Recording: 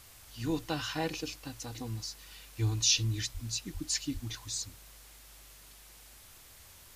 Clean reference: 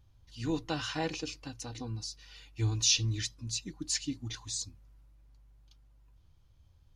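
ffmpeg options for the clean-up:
ffmpeg -i in.wav -filter_complex "[0:a]asplit=3[link_01][link_02][link_03];[link_01]afade=type=out:start_time=3.33:duration=0.02[link_04];[link_02]highpass=frequency=140:width=0.5412,highpass=frequency=140:width=1.3066,afade=type=in:start_time=3.33:duration=0.02,afade=type=out:start_time=3.45:duration=0.02[link_05];[link_03]afade=type=in:start_time=3.45:duration=0.02[link_06];[link_04][link_05][link_06]amix=inputs=3:normalize=0,asplit=3[link_07][link_08][link_09];[link_07]afade=type=out:start_time=3.73:duration=0.02[link_10];[link_08]highpass=frequency=140:width=0.5412,highpass=frequency=140:width=1.3066,afade=type=in:start_time=3.73:duration=0.02,afade=type=out:start_time=3.85:duration=0.02[link_11];[link_09]afade=type=in:start_time=3.85:duration=0.02[link_12];[link_10][link_11][link_12]amix=inputs=3:normalize=0,asplit=3[link_13][link_14][link_15];[link_13]afade=type=out:start_time=4.13:duration=0.02[link_16];[link_14]highpass=frequency=140:width=0.5412,highpass=frequency=140:width=1.3066,afade=type=in:start_time=4.13:duration=0.02,afade=type=out:start_time=4.25:duration=0.02[link_17];[link_15]afade=type=in:start_time=4.25:duration=0.02[link_18];[link_16][link_17][link_18]amix=inputs=3:normalize=0,afwtdn=0.002" out.wav

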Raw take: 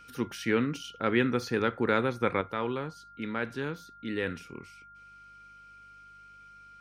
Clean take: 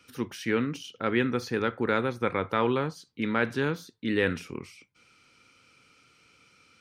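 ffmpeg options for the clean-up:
ffmpeg -i in.wav -af "bandreject=frequency=49.8:width_type=h:width=4,bandreject=frequency=99.6:width_type=h:width=4,bandreject=frequency=149.4:width_type=h:width=4,bandreject=frequency=199.2:width_type=h:width=4,bandreject=frequency=1400:width=30,asetnsamples=nb_out_samples=441:pad=0,asendcmd='2.41 volume volume 6.5dB',volume=0dB" out.wav

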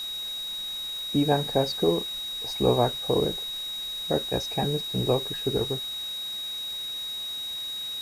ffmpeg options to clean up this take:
ffmpeg -i in.wav -af "adeclick=threshold=4,bandreject=frequency=3800:width=30,afwtdn=0.0056" out.wav

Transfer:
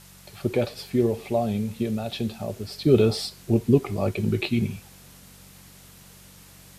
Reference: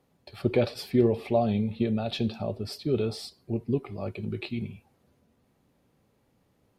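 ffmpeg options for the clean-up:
ffmpeg -i in.wav -af "bandreject=frequency=47:width_type=h:width=4,bandreject=frequency=94:width_type=h:width=4,bandreject=frequency=141:width_type=h:width=4,bandreject=frequency=188:width_type=h:width=4,afwtdn=0.0032,asetnsamples=nb_out_samples=441:pad=0,asendcmd='2.78 volume volume -9dB',volume=0dB" out.wav

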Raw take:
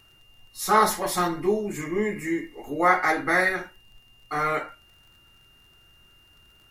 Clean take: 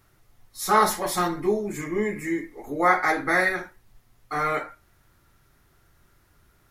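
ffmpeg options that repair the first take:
ffmpeg -i in.wav -af "adeclick=threshold=4,bandreject=frequency=2800:width=30" out.wav

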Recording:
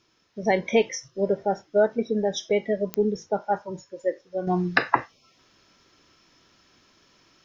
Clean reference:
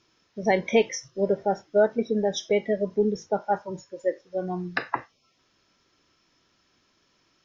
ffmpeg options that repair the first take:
ffmpeg -i in.wav -af "adeclick=threshold=4,asetnsamples=nb_out_samples=441:pad=0,asendcmd='4.47 volume volume -7dB',volume=0dB" out.wav

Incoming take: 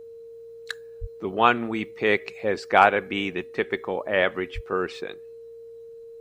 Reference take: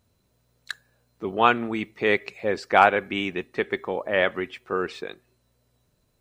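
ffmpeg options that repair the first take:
ffmpeg -i in.wav -filter_complex "[0:a]bandreject=frequency=460:width=30,asplit=3[link_01][link_02][link_03];[link_01]afade=type=out:start_time=1:duration=0.02[link_04];[link_02]highpass=frequency=140:width=0.5412,highpass=frequency=140:width=1.3066,afade=type=in:start_time=1:duration=0.02,afade=type=out:start_time=1.12:duration=0.02[link_05];[link_03]afade=type=in:start_time=1.12:duration=0.02[link_06];[link_04][link_05][link_06]amix=inputs=3:normalize=0,asplit=3[link_07][link_08][link_09];[link_07]afade=type=out:start_time=4.54:duration=0.02[link_10];[link_08]highpass=frequency=140:width=0.5412,highpass=frequency=140:width=1.3066,afade=type=in:start_time=4.54:duration=0.02,afade=type=out:start_time=4.66:duration=0.02[link_11];[link_09]afade=type=in:start_time=4.66:duration=0.02[link_12];[link_10][link_11][link_12]amix=inputs=3:normalize=0" out.wav

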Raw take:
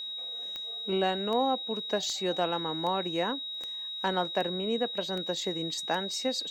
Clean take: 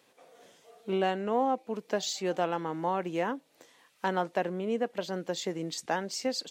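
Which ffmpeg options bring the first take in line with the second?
ffmpeg -i in.wav -af "adeclick=threshold=4,bandreject=frequency=3800:width=30" out.wav

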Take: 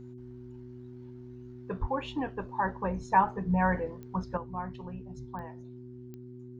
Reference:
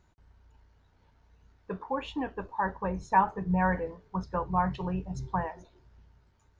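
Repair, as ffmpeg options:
ffmpeg -i in.wav -filter_complex "[0:a]adeclick=threshold=4,bandreject=frequency=123.9:width_type=h:width=4,bandreject=frequency=247.8:width_type=h:width=4,bandreject=frequency=371.7:width_type=h:width=4,asplit=3[link_01][link_02][link_03];[link_01]afade=type=out:start_time=1.8:duration=0.02[link_04];[link_02]highpass=frequency=140:width=0.5412,highpass=frequency=140:width=1.3066,afade=type=in:start_time=1.8:duration=0.02,afade=type=out:start_time=1.92:duration=0.02[link_05];[link_03]afade=type=in:start_time=1.92:duration=0.02[link_06];[link_04][link_05][link_06]amix=inputs=3:normalize=0,asetnsamples=nb_out_samples=441:pad=0,asendcmd='4.37 volume volume 10dB',volume=0dB" out.wav

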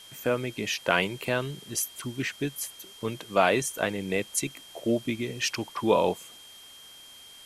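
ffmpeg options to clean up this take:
ffmpeg -i in.wav -af "adeclick=threshold=4,bandreject=frequency=3200:width=30,afftdn=noise_reduction=23:noise_floor=-49" out.wav

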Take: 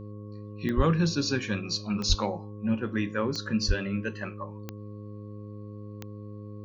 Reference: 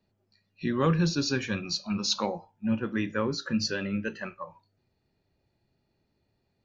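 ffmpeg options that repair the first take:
ffmpeg -i in.wav -filter_complex "[0:a]adeclick=threshold=4,bandreject=frequency=104.2:width_type=h:width=4,bandreject=frequency=208.4:width_type=h:width=4,bandreject=frequency=312.6:width_type=h:width=4,bandreject=frequency=416.8:width_type=h:width=4,bandreject=frequency=521:width_type=h:width=4,bandreject=frequency=1100:width=30,asplit=3[link_01][link_02][link_03];[link_01]afade=type=out:start_time=0.76:duration=0.02[link_04];[link_02]highpass=frequency=140:width=0.5412,highpass=frequency=140:width=1.3066,afade=type=in:start_time=0.76:duration=0.02,afade=type=out:start_time=0.88:duration=0.02[link_05];[link_03]afade=type=in:start_time=0.88:duration=0.02[link_06];[link_04][link_05][link_06]amix=inputs=3:normalize=0,asplit=3[link_07][link_08][link_09];[link_07]afade=type=out:start_time=2.08:duration=0.02[link_10];[link_08]highpass=frequency=140:width=0.5412,highpass=frequency=140:width=1.3066,afade=type=in:start_time=2.08:duration=0.02,afade=type=out:start_time=2.2:duration=0.02[link_11];[link_09]afade=type=in:start_time=2.2:duration=0.02[link_12];[link_10][link_11][link_12]amix=inputs=3:normalize=0,asplit=3[link_13][link_14][link_15];[link_13]afade=type=out:start_time=3.67:duration=0.02[link_16];[link_14]highpass=frequency=140:width=0.5412,highpass=frequency=140:width=1.3066,afade=type=in:start_time=3.67:duration=0.02,afade=type=out:start_time=3.79:duration=0.02[link_17];[link_15]afade=type=in:start_time=3.79:duration=0.02[link_18];[link_16][link_17][link_18]amix=inputs=3:normalize=0" out.wav

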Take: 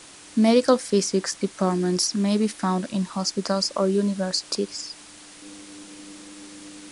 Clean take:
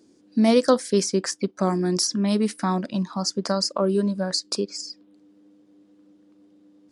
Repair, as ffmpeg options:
ffmpeg -i in.wav -af "afwtdn=0.0071,asetnsamples=nb_out_samples=441:pad=0,asendcmd='5.42 volume volume -11dB',volume=0dB" out.wav

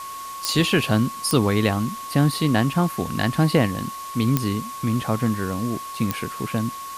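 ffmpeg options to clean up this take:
ffmpeg -i in.wav -af "adeclick=threshold=4,bandreject=frequency=1100:width=30,afftdn=noise_reduction=30:noise_floor=-34" out.wav

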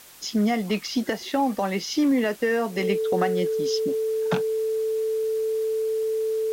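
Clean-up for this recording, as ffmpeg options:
ffmpeg -i in.wav -af "bandreject=frequency=440:width=30,afwtdn=0.0045" out.wav

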